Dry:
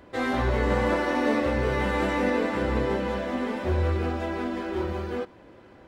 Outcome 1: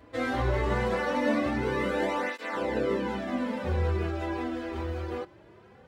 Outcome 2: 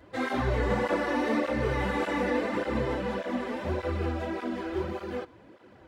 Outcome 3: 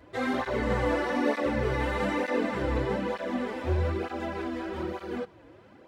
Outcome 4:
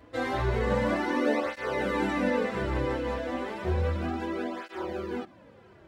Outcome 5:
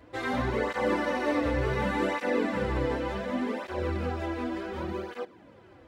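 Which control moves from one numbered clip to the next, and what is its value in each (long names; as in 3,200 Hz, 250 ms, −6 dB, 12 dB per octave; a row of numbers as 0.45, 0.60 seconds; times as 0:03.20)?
through-zero flanger with one copy inverted, nulls at: 0.21, 1.7, 1.1, 0.32, 0.68 Hertz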